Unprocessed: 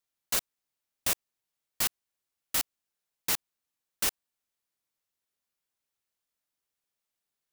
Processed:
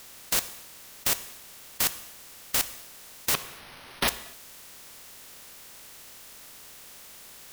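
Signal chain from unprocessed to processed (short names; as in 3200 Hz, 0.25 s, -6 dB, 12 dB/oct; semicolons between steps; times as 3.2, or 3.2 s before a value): per-bin compression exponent 0.4; 3.34–4.08 careless resampling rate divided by 6×, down none, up hold; vibrato 7.4 Hz 9.4 cents; non-linear reverb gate 0.29 s falling, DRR 11.5 dB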